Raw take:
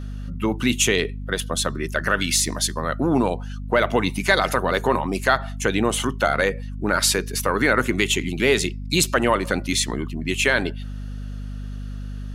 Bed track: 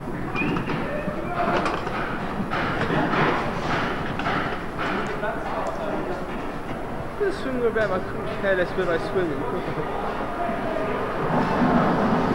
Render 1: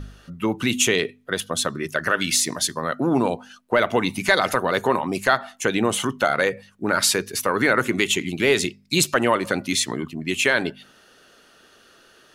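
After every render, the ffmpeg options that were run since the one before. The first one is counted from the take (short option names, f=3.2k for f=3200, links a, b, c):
-af "bandreject=f=50:t=h:w=4,bandreject=f=100:t=h:w=4,bandreject=f=150:t=h:w=4,bandreject=f=200:t=h:w=4,bandreject=f=250:t=h:w=4"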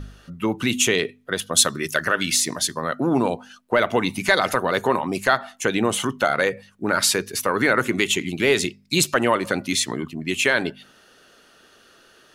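-filter_complex "[0:a]asplit=3[a][b][c];[a]afade=t=out:st=1.53:d=0.02[d];[b]highshelf=f=2.8k:g=11,afade=t=in:st=1.53:d=0.02,afade=t=out:st=2.03:d=0.02[e];[c]afade=t=in:st=2.03:d=0.02[f];[d][e][f]amix=inputs=3:normalize=0"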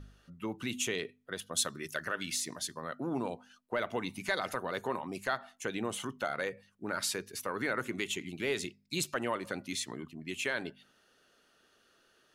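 -af "volume=-14.5dB"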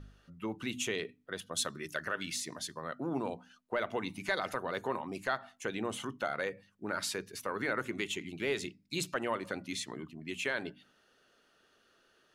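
-af "highshelf=f=6.5k:g=-6.5,bandreject=f=60:t=h:w=6,bandreject=f=120:t=h:w=6,bandreject=f=180:t=h:w=6,bandreject=f=240:t=h:w=6,bandreject=f=300:t=h:w=6"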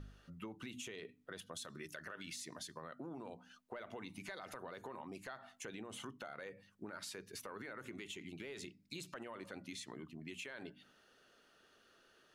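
-af "alimiter=level_in=4.5dB:limit=-24dB:level=0:latency=1:release=42,volume=-4.5dB,acompressor=threshold=-46dB:ratio=4"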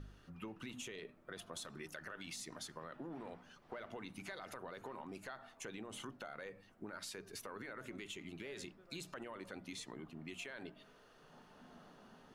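-filter_complex "[1:a]volume=-40.5dB[a];[0:a][a]amix=inputs=2:normalize=0"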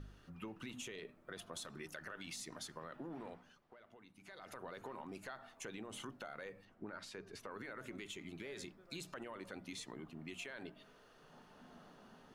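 -filter_complex "[0:a]asettb=1/sr,asplit=3[a][b][c];[a]atrim=end=6.654[d];[b]atrim=start=6.65:end=7.51,asetpts=PTS-STARTPTS,afade=t=in:d=0.004:c=qsin,afade=t=out:st=0.856:d=0.004:c=qsin,aemphasis=mode=reproduction:type=50fm[e];[c]atrim=start=7.506[f];[d][e]acrossfade=d=0.004:c1=hsin:c2=qsin[g];[g][f]acrossfade=d=0.004:c1=qsin:c2=hsin,asettb=1/sr,asplit=3[h][i][j];[h]atrim=end=8.054[k];[i]atrim=start=8.05:end=8.88,asetpts=PTS-STARTPTS,afade=t=in:d=0.004:c=qsin,afade=t=out:st=0.826:d=0.004:c=qsin,bandreject=f=2.8k:w=12[l];[j]atrim=start=8.876[m];[k][l]acrossfade=d=0.004:c1=hsin:c2=qsin[n];[n][m]acrossfade=d=0.004:c1=qsin:c2=hsin,asplit=3[o][p][q];[o]atrim=end=3.7,asetpts=PTS-STARTPTS,afade=t=out:st=3.25:d=0.45:silence=0.211349[r];[p]atrim=start=3.7:end=4.2,asetpts=PTS-STARTPTS,volume=-13.5dB[s];[q]atrim=start=4.2,asetpts=PTS-STARTPTS,afade=t=in:d=0.45:silence=0.211349[t];[r][s][t]concat=n=3:v=0:a=1"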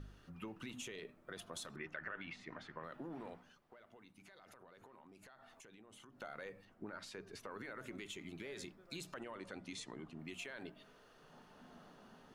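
-filter_complex "[0:a]asettb=1/sr,asplit=3[a][b][c];[a]atrim=end=1.764[d];[b]atrim=start=1.76:end=2.84,asetpts=PTS-STARTPTS,afade=t=in:d=0.004:c=qsin,afade=t=out:st=1.076:d=0.004:c=qsin,lowpass=f=2.1k:t=q:w=1.7[e];[c]atrim=start=2.836[f];[d][e]acrossfade=d=0.004:c1=hsin:c2=qsin[g];[g][f]acrossfade=d=0.004:c1=qsin:c2=hsin,asettb=1/sr,asplit=3[h][i][j];[h]atrim=end=4.254[k];[i]atrim=start=4.25:end=6.22,asetpts=PTS-STARTPTS,afade=t=in:d=0.004:c=qsin,afade=t=out:st=1.966:d=0.004:c=qsin,acompressor=threshold=-57dB:ratio=6:attack=3.2:release=140:knee=1:detection=peak[l];[j]atrim=start=6.216[m];[k][l]acrossfade=d=0.004:c1=hsin:c2=qsin[n];[n][m]acrossfade=d=0.004:c1=qsin:c2=hsin,asettb=1/sr,asplit=3[o][p][q];[o]atrim=end=9.204[r];[p]atrim=start=9.2:end=10.19,asetpts=PTS-STARTPTS,afade=t=in:d=0.004:c=qsin,afade=t=out:st=0.986:d=0.004:c=qsin,lowpass=f=9.9k:w=0.5412,lowpass=f=9.9k:w=1.3066[s];[q]atrim=start=10.186[t];[r][s]acrossfade=d=0.004:c1=hsin:c2=qsin[u];[u][t]acrossfade=d=0.004:c1=qsin:c2=hsin"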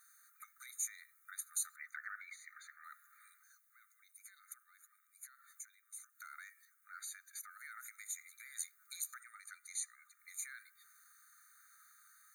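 -af "aexciter=amount=11.9:drive=3.6:freq=6.6k,afftfilt=real='re*eq(mod(floor(b*sr/1024/1200),2),1)':imag='im*eq(mod(floor(b*sr/1024/1200),2),1)':win_size=1024:overlap=0.75"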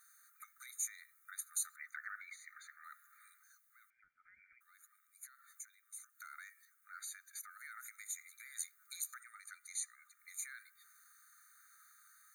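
-filter_complex "[0:a]asettb=1/sr,asplit=3[a][b][c];[a]atrim=end=3.904[d];[b]atrim=start=3.9:end=4.61,asetpts=PTS-STARTPTS,afade=t=in:d=0.004:c=qsin,afade=t=out:st=0.706:d=0.004:c=qsin,lowpass=f=3.1k:t=q:w=0.5098,lowpass=f=3.1k:t=q:w=0.6013,lowpass=f=3.1k:t=q:w=0.9,lowpass=f=3.1k:t=q:w=2.563,afreqshift=-3600[e];[c]atrim=start=4.606[f];[d][e]acrossfade=d=0.004:c1=hsin:c2=qsin[g];[g][f]acrossfade=d=0.004:c1=qsin:c2=hsin"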